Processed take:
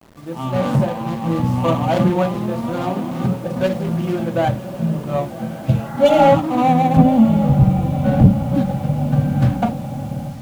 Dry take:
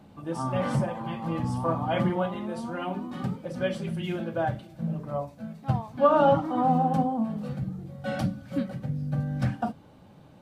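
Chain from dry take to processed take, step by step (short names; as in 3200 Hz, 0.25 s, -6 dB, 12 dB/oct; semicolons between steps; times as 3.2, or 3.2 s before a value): median filter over 25 samples; 5.53–6.22 spectral repair 680–2100 Hz both; 6.97–8.55 RIAA curve playback; diffused feedback echo 1.11 s, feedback 60%, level -12.5 dB; soft clip -10 dBFS, distortion -21 dB; AGC gain up to 8.5 dB; bit-crush 8-bit; gain +2 dB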